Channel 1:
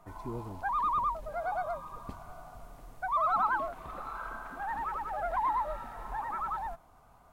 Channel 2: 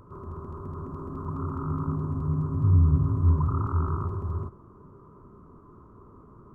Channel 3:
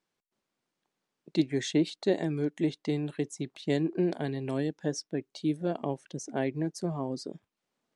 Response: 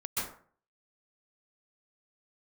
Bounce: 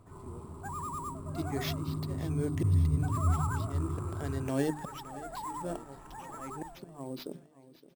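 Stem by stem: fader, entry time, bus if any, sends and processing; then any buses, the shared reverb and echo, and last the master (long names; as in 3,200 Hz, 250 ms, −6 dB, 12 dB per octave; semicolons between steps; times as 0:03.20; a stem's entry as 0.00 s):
−10.0 dB, 0.00 s, no send, no echo send, no processing
−12.5 dB, 0.00 s, no send, no echo send, high-pass filter 76 Hz; low-shelf EQ 430 Hz +8 dB
+2.0 dB, 0.00 s, no send, echo send −17.5 dB, mains-hum notches 50/100/150/200/250/300/350/400 Hz; volume swells 616 ms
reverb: not used
echo: repeating echo 567 ms, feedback 59%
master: sample-rate reduction 8,700 Hz, jitter 0%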